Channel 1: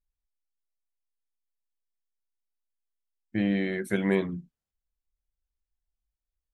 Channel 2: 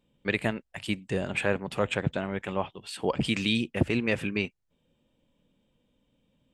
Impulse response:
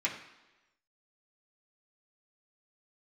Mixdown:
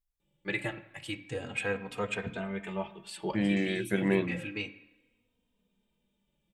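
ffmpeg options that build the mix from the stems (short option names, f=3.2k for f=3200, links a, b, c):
-filter_complex "[0:a]crystalizer=i=2:c=0,volume=-2dB,asplit=2[a][b];[1:a]highshelf=f=4.5k:g=10,asplit=2[c][d];[d]adelay=3,afreqshift=-0.31[e];[c][e]amix=inputs=2:normalize=1,adelay=200,volume=-4dB,asplit=2[f][g];[g]volume=-9.5dB[h];[b]apad=whole_len=297208[i];[f][i]sidechaincompress=threshold=-44dB:ratio=8:attack=16:release=104[j];[2:a]atrim=start_sample=2205[k];[h][k]afir=irnorm=-1:irlink=0[l];[a][j][l]amix=inputs=3:normalize=0,highshelf=f=4.3k:g=-9.5"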